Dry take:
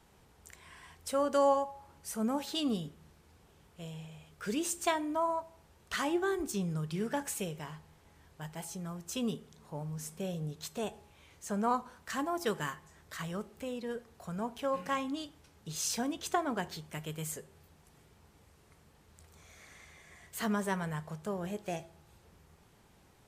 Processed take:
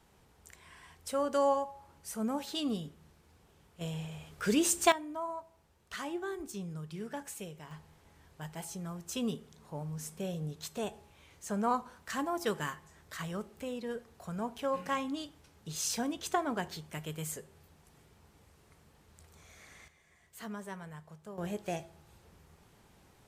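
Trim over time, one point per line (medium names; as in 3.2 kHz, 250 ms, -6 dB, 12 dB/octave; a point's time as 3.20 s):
-1.5 dB
from 3.81 s +6 dB
from 4.92 s -6.5 dB
from 7.71 s 0 dB
from 19.88 s -10 dB
from 21.38 s +1 dB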